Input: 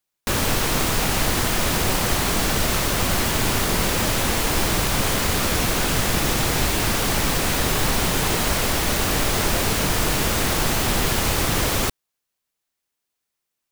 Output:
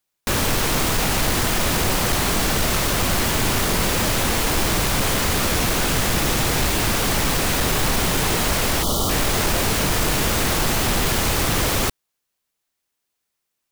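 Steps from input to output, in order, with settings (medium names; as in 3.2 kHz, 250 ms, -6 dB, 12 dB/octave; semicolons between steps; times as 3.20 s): time-frequency box 8.83–9.10 s, 1.4–2.9 kHz -27 dB; saturation -14.5 dBFS, distortion -18 dB; trim +2.5 dB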